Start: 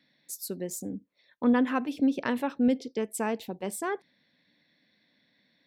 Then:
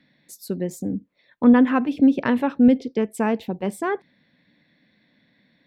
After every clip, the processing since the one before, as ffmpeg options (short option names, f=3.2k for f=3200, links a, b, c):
-af "bass=f=250:g=6,treble=f=4k:g=-11,volume=6.5dB"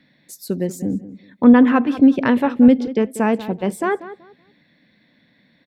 -filter_complex "[0:a]asplit=2[a][b];[b]adelay=189,lowpass=f=2.9k:p=1,volume=-14.5dB,asplit=2[c][d];[d]adelay=189,lowpass=f=2.9k:p=1,volume=0.24,asplit=2[e][f];[f]adelay=189,lowpass=f=2.9k:p=1,volume=0.24[g];[a][c][e][g]amix=inputs=4:normalize=0,volume=4dB"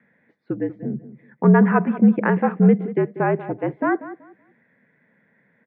-af "highpass=f=260:t=q:w=0.5412,highpass=f=260:t=q:w=1.307,lowpass=f=2.2k:t=q:w=0.5176,lowpass=f=2.2k:t=q:w=0.7071,lowpass=f=2.2k:t=q:w=1.932,afreqshift=-59"